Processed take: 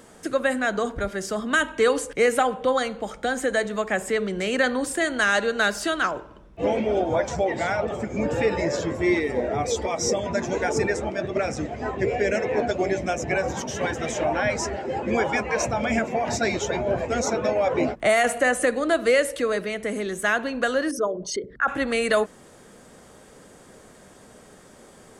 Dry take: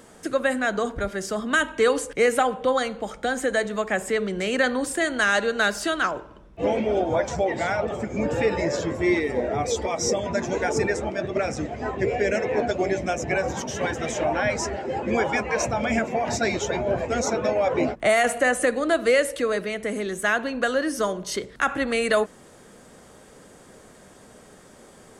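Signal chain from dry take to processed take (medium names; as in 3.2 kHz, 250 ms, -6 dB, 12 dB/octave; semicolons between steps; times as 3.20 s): 20.91–21.68 s: resonances exaggerated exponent 2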